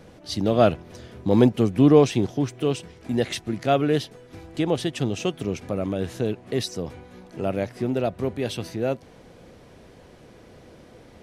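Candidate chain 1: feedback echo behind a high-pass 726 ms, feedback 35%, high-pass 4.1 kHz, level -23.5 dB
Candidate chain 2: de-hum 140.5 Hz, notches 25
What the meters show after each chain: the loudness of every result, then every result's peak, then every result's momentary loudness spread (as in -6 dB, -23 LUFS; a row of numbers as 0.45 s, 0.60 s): -24.0 LUFS, -24.0 LUFS; -3.5 dBFS, -3.0 dBFS; 14 LU, 14 LU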